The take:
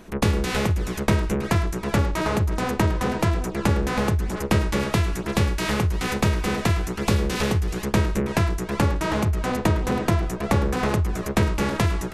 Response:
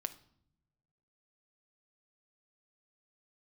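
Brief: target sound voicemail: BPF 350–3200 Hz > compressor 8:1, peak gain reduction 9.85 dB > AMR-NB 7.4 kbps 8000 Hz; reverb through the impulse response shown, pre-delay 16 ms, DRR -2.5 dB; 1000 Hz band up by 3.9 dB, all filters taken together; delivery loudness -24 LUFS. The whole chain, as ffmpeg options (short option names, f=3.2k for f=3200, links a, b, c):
-filter_complex "[0:a]equalizer=f=1k:t=o:g=5,asplit=2[a][b];[1:a]atrim=start_sample=2205,adelay=16[c];[b][c]afir=irnorm=-1:irlink=0,volume=3.5dB[d];[a][d]amix=inputs=2:normalize=0,highpass=350,lowpass=3.2k,acompressor=threshold=-22dB:ratio=8,volume=5dB" -ar 8000 -c:a libopencore_amrnb -b:a 7400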